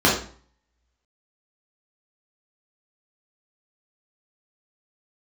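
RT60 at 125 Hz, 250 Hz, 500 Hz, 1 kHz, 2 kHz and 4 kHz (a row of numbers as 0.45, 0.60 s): 0.60, 0.50, 0.45, 0.45, 0.40, 0.40 s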